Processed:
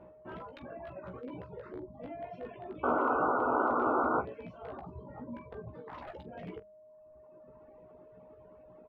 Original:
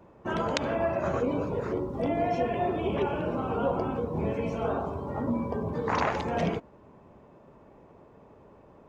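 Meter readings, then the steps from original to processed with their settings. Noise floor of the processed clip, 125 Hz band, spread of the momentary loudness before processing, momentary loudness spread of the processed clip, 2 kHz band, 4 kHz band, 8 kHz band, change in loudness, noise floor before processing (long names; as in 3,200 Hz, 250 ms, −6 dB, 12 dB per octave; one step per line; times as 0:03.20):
−57 dBFS, −15.5 dB, 4 LU, 18 LU, −3.0 dB, below −20 dB, can't be measured, −5.0 dB, −55 dBFS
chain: reverb reduction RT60 1.7 s
mains-hum notches 50/100/150/200 Hz
reverb reduction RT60 0.84 s
high-shelf EQ 3,100 Hz +7.5 dB
reversed playback
downward compressor 6 to 1, threshold −41 dBFS, peak gain reduction 19 dB
reversed playback
steady tone 620 Hz −55 dBFS
in parallel at −1 dB: wrap-around overflow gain 33.5 dB
on the sum: sound drawn into the spectrogram noise, 0:02.83–0:04.21, 230–1,500 Hz −22 dBFS
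high-frequency loss of the air 460 metres
ambience of single reflections 16 ms −6 dB, 44 ms −16 dB
level −6 dB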